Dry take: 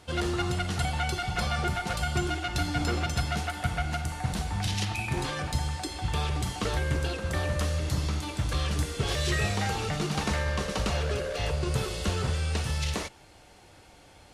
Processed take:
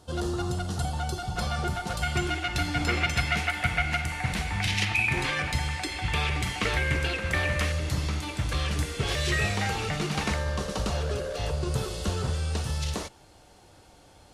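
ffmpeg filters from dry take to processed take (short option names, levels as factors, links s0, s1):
-af "asetnsamples=n=441:p=0,asendcmd='1.38 equalizer g -5.5;2.02 equalizer g 6;2.89 equalizer g 13;7.72 equalizer g 4.5;10.34 equalizer g -6',equalizer=f=2200:t=o:w=0.87:g=-14.5"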